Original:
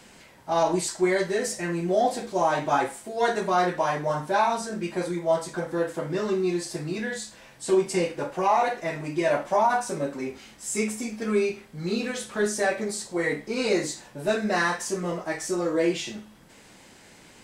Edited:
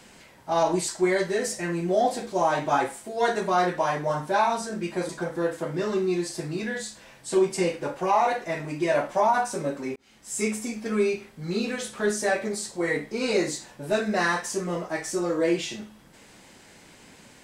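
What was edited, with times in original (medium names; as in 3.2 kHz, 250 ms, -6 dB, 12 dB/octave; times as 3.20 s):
5.09–5.45 s: delete
10.32–10.75 s: fade in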